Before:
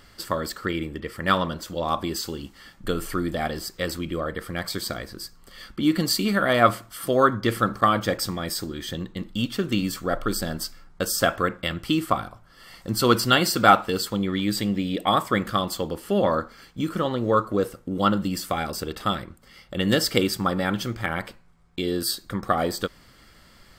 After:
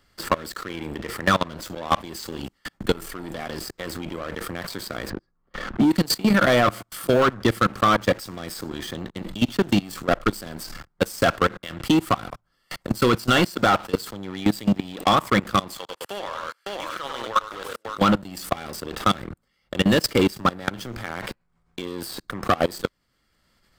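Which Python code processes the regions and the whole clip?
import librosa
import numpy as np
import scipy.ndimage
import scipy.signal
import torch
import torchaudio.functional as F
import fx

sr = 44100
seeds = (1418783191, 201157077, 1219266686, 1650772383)

y = fx.chain(x, sr, fx.lowpass(hz=1400.0, slope=12),
    fx.pre_swell(db_per_s=89.0), at=(5.1, 5.91))
y = fx.chain(y, sr, fx.highpass(hz=1100.0, slope=12),
    fx.high_shelf(hz=6200.0, db=-7.5),
    fx.echo_multitap(ms=(97, 99, 555), db=(-5.5, -16.5, -8.5)), at=(15.77, 17.98))
y = fx.level_steps(y, sr, step_db=23)
y = fx.leveller(y, sr, passes=3)
y = fx.band_squash(y, sr, depth_pct=40)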